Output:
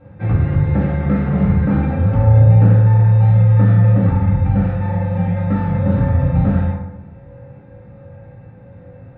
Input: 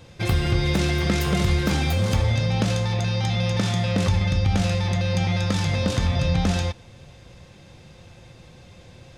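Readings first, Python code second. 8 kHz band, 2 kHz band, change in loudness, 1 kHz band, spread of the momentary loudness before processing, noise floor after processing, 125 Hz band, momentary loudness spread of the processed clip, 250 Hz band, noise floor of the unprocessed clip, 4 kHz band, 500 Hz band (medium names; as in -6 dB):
under -40 dB, -4.0 dB, +8.0 dB, +3.5 dB, 2 LU, -41 dBFS, +10.0 dB, 8 LU, +7.5 dB, -48 dBFS, under -20 dB, +3.5 dB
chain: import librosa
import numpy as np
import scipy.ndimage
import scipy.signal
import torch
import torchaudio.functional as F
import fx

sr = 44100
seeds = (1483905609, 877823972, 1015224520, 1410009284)

y = scipy.signal.sosfilt(scipy.signal.butter(4, 1900.0, 'lowpass', fs=sr, output='sos'), x)
y = fx.low_shelf(y, sr, hz=320.0, db=5.5)
y = fx.rev_fdn(y, sr, rt60_s=0.93, lf_ratio=1.2, hf_ratio=0.5, size_ms=11.0, drr_db=-8.0)
y = y * 10.0 ** (-6.0 / 20.0)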